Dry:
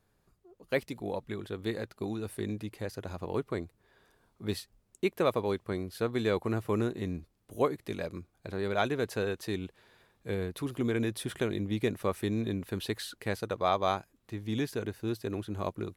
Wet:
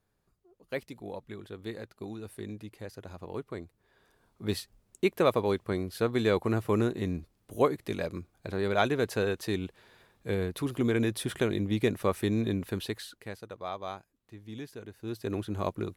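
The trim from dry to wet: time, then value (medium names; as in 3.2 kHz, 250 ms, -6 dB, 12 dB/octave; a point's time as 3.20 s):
3.56 s -5 dB
4.59 s +3 dB
12.67 s +3 dB
13.39 s -9.5 dB
14.89 s -9.5 dB
15.31 s +2.5 dB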